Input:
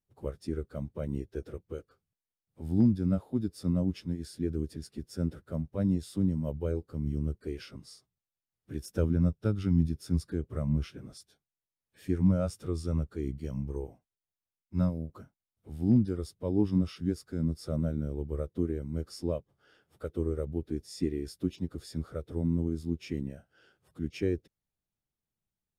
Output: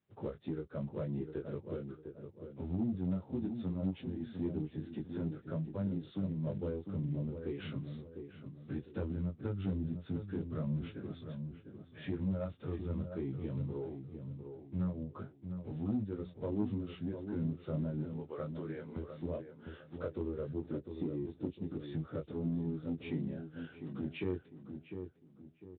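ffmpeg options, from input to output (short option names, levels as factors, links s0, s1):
-filter_complex "[0:a]asettb=1/sr,asplit=3[s0][s1][s2];[s0]atrim=end=18.034[s3];[s1]atrim=start=18.03:end=18.96,asetpts=PTS-STARTPTS,afade=t=in:d=0.004:c=qsin,afade=t=out:st=0.926:d=0.004:c=qsin,highpass=780[s4];[s2]atrim=start=18.956[s5];[s3][s4]acrossfade=d=0.004:c1=hsin:c2=qsin[s6];[s6][s5]acrossfade=d=0.004:c1=qsin:c2=hsin,asettb=1/sr,asplit=3[s7][s8][s9];[s7]atrim=end=20.754[s10];[s8]atrim=start=20.75:end=21.62,asetpts=PTS-STARTPTS,afade=t=in:d=0.004:c=qsin,afade=t=out:st=0.866:d=0.004:c=qsin,equalizer=f=2000:w=0.51:g=-10[s11];[s9]atrim=start=21.616[s12];[s10][s11]acrossfade=d=0.004:c1=hsin:c2=qsin[s13];[s13][s12]acrossfade=d=0.004:c1=qsin:c2=hsin,acompressor=threshold=0.00501:ratio=2.5,flanger=delay=19:depth=3.1:speed=0.18,asoftclip=type=tanh:threshold=0.0141,asplit=2[s14][s15];[s15]adelay=702,lowpass=f=1200:p=1,volume=0.447,asplit=2[s16][s17];[s17]adelay=702,lowpass=f=1200:p=1,volume=0.36,asplit=2[s18][s19];[s19]adelay=702,lowpass=f=1200:p=1,volume=0.36,asplit=2[s20][s21];[s21]adelay=702,lowpass=f=1200:p=1,volume=0.36[s22];[s14][s16][s18][s20][s22]amix=inputs=5:normalize=0,volume=3.35" -ar 8000 -c:a libspeex -b:a 24k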